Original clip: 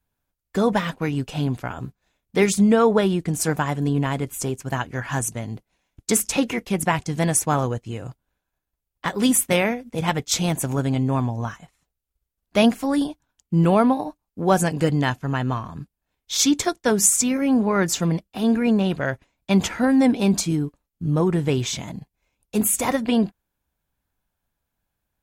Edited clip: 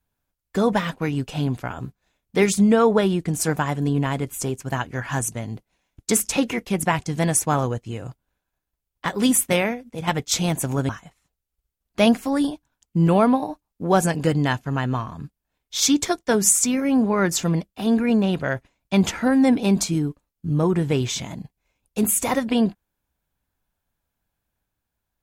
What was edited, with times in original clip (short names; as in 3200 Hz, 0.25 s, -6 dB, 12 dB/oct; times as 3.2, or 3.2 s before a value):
9.48–10.07 fade out, to -6.5 dB
10.89–11.46 cut